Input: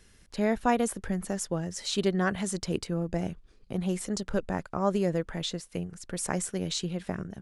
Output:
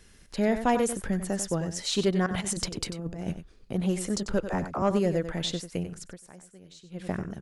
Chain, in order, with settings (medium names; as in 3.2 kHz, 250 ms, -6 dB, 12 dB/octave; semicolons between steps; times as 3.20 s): 2.26–3.32 s: compressor with a negative ratio -34 dBFS, ratio -0.5; 4.40–4.82 s: phase dispersion lows, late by 44 ms, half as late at 360 Hz; delay 94 ms -11 dB; saturation -15.5 dBFS, distortion -21 dB; 6.00–7.08 s: dip -21.5 dB, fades 0.18 s; trim +2.5 dB